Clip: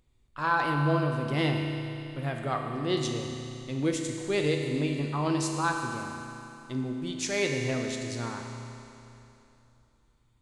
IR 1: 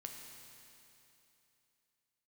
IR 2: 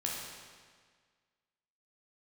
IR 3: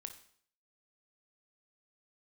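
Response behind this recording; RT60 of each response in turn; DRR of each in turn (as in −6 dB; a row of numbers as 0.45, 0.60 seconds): 1; 3.0, 1.7, 0.60 seconds; 1.5, −3.5, 7.0 decibels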